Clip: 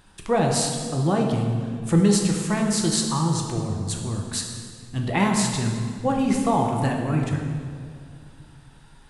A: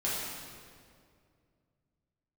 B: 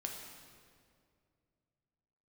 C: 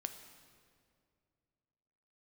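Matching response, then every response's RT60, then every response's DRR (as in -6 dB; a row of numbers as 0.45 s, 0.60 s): B; 2.2 s, 2.3 s, 2.3 s; -8.5 dB, 0.5 dB, 7.0 dB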